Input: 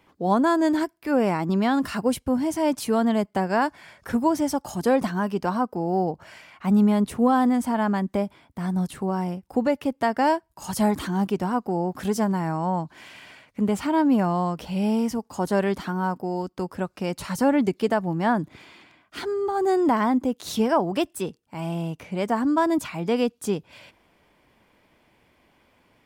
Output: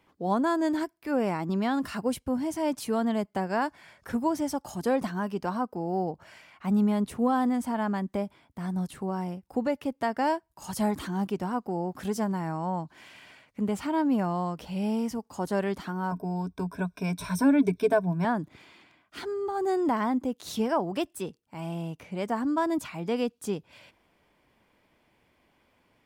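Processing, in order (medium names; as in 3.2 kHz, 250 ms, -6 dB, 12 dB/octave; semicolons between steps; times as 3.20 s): 16.11–18.25 s: rippled EQ curve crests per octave 1.6, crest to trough 16 dB; trim -5.5 dB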